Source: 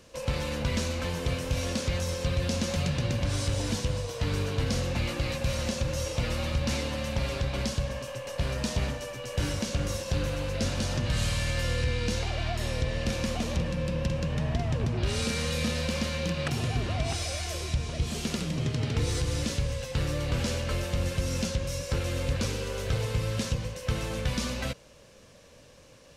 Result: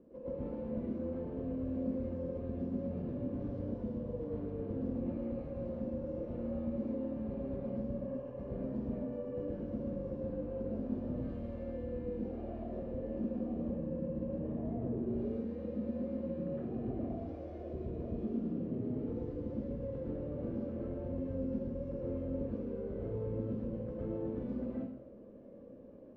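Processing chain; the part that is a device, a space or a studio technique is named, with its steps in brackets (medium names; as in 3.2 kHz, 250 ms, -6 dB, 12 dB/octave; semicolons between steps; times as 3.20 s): resonant low shelf 170 Hz -14 dB, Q 1.5; television next door (compression, threshold -38 dBFS, peak gain reduction 12.5 dB; low-pass 320 Hz 12 dB/octave; reverberation RT60 0.75 s, pre-delay 100 ms, DRR -7 dB); trim +1.5 dB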